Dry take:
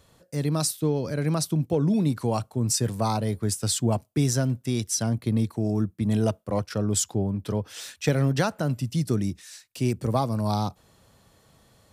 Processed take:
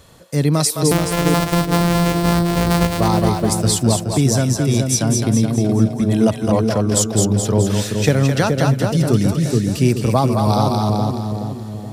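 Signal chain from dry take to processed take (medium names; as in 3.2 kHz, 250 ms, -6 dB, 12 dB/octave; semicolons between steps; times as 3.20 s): 0.91–3.00 s: sorted samples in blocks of 256 samples; two-band feedback delay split 510 Hz, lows 424 ms, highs 212 ms, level -4 dB; gain riding within 4 dB 0.5 s; trim +7.5 dB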